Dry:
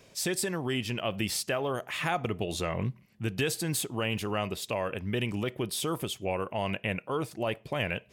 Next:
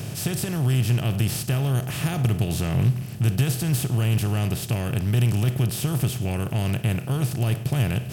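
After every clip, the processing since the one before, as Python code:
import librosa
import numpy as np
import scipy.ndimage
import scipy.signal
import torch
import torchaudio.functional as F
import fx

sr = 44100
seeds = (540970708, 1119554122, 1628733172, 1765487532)

y = fx.bin_compress(x, sr, power=0.4)
y = fx.graphic_eq(y, sr, hz=(125, 250, 500, 1000, 2000, 4000, 8000), db=(9, -5, -11, -11, -9, -7, -7))
y = y * librosa.db_to_amplitude(4.5)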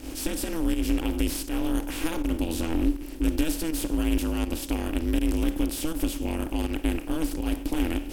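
y = fx.volume_shaper(x, sr, bpm=81, per_beat=1, depth_db=-10, release_ms=113.0, shape='fast start')
y = y * np.sin(2.0 * np.pi * 160.0 * np.arange(len(y)) / sr)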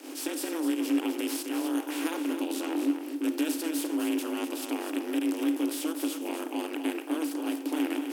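y = scipy.signal.sosfilt(scipy.signal.cheby1(6, 3, 270.0, 'highpass', fs=sr, output='sos'), x)
y = y + 10.0 ** (-8.0 / 20.0) * np.pad(y, (int(255 * sr / 1000.0), 0))[:len(y)]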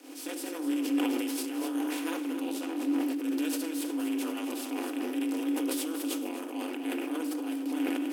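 y = fx.room_shoebox(x, sr, seeds[0], volume_m3=3200.0, walls='furnished', distance_m=1.9)
y = fx.sustainer(y, sr, db_per_s=22.0)
y = y * librosa.db_to_amplitude(-7.0)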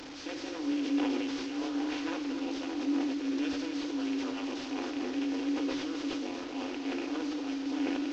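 y = fx.delta_mod(x, sr, bps=32000, step_db=-37.0)
y = y * librosa.db_to_amplitude(-1.5)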